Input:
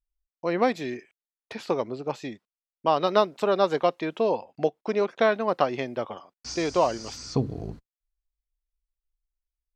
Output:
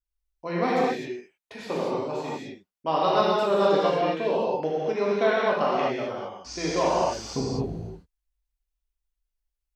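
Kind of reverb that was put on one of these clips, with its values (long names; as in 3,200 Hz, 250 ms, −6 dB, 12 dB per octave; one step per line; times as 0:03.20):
reverb whose tail is shaped and stops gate 280 ms flat, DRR −7 dB
level −6 dB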